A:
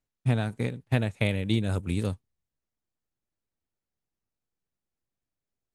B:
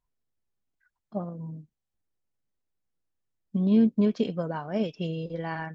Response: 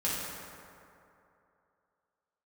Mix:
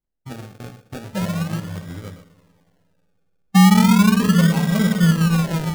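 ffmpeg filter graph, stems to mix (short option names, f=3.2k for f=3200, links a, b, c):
-filter_complex "[0:a]flanger=delay=6.8:depth=6.1:regen=-37:speed=1.5:shape=triangular,volume=-4.5dB,asplit=2[a][b];[b]volume=-14dB[c];[1:a]asubboost=boost=12:cutoff=120,volume=0dB,asplit=2[d][e];[e]volume=-5dB[f];[2:a]atrim=start_sample=2205[g];[c][f]amix=inputs=2:normalize=0[h];[h][g]afir=irnorm=-1:irlink=0[i];[a][d][i]amix=inputs=3:normalize=0,agate=range=-7dB:threshold=-42dB:ratio=16:detection=peak,acrusher=samples=35:mix=1:aa=0.000001:lfo=1:lforange=21:lforate=0.37,alimiter=limit=-6dB:level=0:latency=1:release=158"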